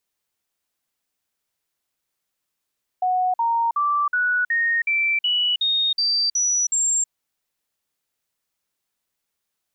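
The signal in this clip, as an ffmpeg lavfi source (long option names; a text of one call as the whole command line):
ffmpeg -f lavfi -i "aevalsrc='0.133*clip(min(mod(t,0.37),0.32-mod(t,0.37))/0.005,0,1)*sin(2*PI*736*pow(2,floor(t/0.37)/3)*mod(t,0.37))':duration=4.07:sample_rate=44100" out.wav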